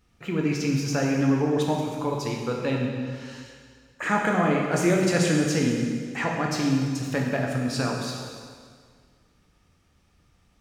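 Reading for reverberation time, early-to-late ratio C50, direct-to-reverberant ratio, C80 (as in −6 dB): 1.9 s, 1.5 dB, −1.0 dB, 3.0 dB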